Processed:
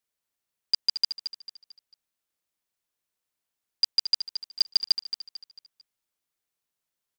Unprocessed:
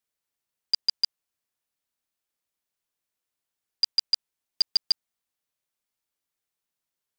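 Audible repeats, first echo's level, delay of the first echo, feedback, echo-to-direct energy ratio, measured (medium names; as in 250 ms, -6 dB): 4, -10.0 dB, 223 ms, 39%, -9.5 dB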